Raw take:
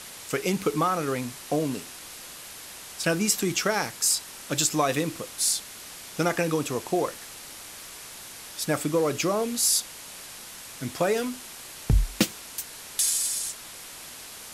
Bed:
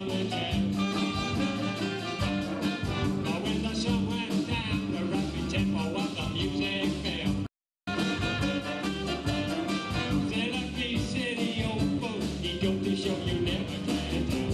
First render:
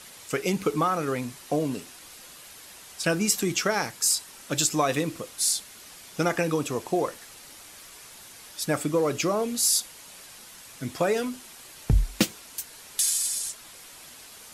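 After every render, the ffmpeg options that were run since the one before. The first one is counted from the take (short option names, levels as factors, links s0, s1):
-af "afftdn=nr=6:nf=-43"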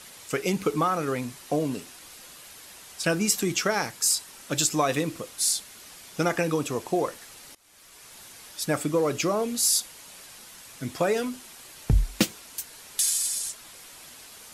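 -filter_complex "[0:a]asplit=2[s0][s1];[s0]atrim=end=7.55,asetpts=PTS-STARTPTS,afade=t=out:st=7.546:d=0.004:c=hsin:silence=0.0794328[s2];[s1]atrim=start=7.55,asetpts=PTS-STARTPTS,afade=t=in:d=0.64:silence=0.0794328[s3];[s2][s3]concat=n=2:v=0:a=1"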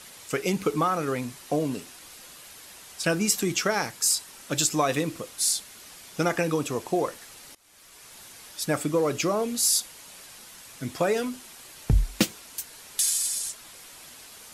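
-af anull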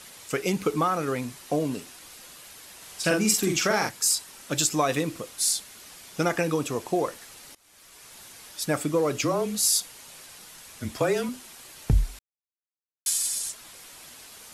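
-filter_complex "[0:a]asettb=1/sr,asplit=3[s0][s1][s2];[s0]atrim=end=2.774[s3];[s1]atrim=start=2.77:end=3.89,asetpts=PTS-STARTPTS,afade=t=in:d=0.004:c=qsin,afade=t=out:st=1.116:d=0.004:c=qsin,asplit=2[s4][s5];[s5]adelay=46,volume=0.668[s6];[s4][s6]amix=inputs=2:normalize=0,atrim=end_sample=49392[s7];[s2]atrim=start=3.886[s8];[s3][s7]acrossfade=d=0.004:c1=hsin:c2=qsin[s9];[s9][s8]acrossfade=d=0.004:c1=qsin:c2=hsin,asettb=1/sr,asplit=3[s10][s11][s12];[s10]atrim=end=9.214[s13];[s11]atrim=start=9.21:end=11.29,asetpts=PTS-STARTPTS,afade=t=in:d=0.004:c=qsin,afade=t=out:st=2.076:d=0.004:c=qsin,afreqshift=-28[s14];[s12]atrim=start=11.286[s15];[s13][s14]acrossfade=d=0.004:c1=hsin:c2=qsin[s16];[s16][s15]acrossfade=d=0.004:c1=qsin:c2=hsin,asplit=3[s17][s18][s19];[s17]atrim=end=12.19,asetpts=PTS-STARTPTS,afade=t=out:st=12.186:d=0.004:c=hsin[s20];[s18]atrim=start=12.19:end=13.06,asetpts=PTS-STARTPTS,volume=0[s21];[s19]atrim=start=13.06,asetpts=PTS-STARTPTS,afade=t=in:d=0.004:c=hsin[s22];[s20][s21][s22]concat=n=3:v=0:a=1"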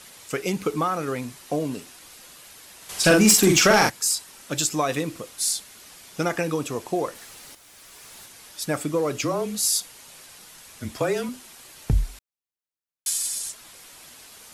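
-filter_complex "[0:a]asettb=1/sr,asplit=3[s0][s1][s2];[s0]atrim=end=2.894[s3];[s1]atrim=start=2.89:end=3.9,asetpts=PTS-STARTPTS,afade=t=in:d=0.004:c=qsin,afade=t=out:st=1.006:d=0.004:c=qsin,aeval=exprs='0.355*sin(PI/2*1.78*val(0)/0.355)':c=same[s4];[s2]atrim=start=3.896[s5];[s3][s4]acrossfade=d=0.004:c1=hsin:c2=qsin[s6];[s6][s5]acrossfade=d=0.004:c1=qsin:c2=hsin,asettb=1/sr,asplit=3[s7][s8][s9];[s7]atrim=end=7.154[s10];[s8]atrim=start=7.15:end=8.26,asetpts=PTS-STARTPTS,afade=t=in:d=0.004:c=qsin,afade=t=out:st=1.106:d=0.004:c=qsin,aeval=exprs='val(0)+0.5*0.00355*sgn(val(0))':c=same[s11];[s9]atrim=start=8.256[s12];[s10][s11]acrossfade=d=0.004:c1=hsin:c2=qsin[s13];[s13][s12]acrossfade=d=0.004:c1=qsin:c2=hsin"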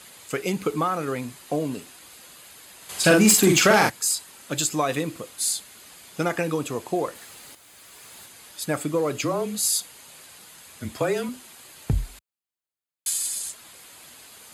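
-af "highpass=56,bandreject=f=5600:w=6.4"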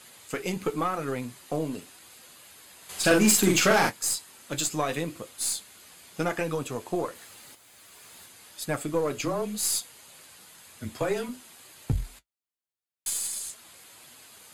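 -af "flanger=delay=7.9:depth=4.3:regen=-46:speed=0.92:shape=sinusoidal,aeval=exprs='0.335*(cos(1*acos(clip(val(0)/0.335,-1,1)))-cos(1*PI/2))+0.0299*(cos(4*acos(clip(val(0)/0.335,-1,1)))-cos(4*PI/2))+0.0335*(cos(6*acos(clip(val(0)/0.335,-1,1)))-cos(6*PI/2))':c=same"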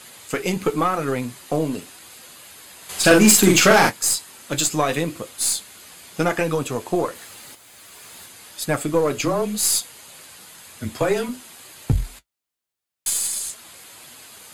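-af "volume=2.37"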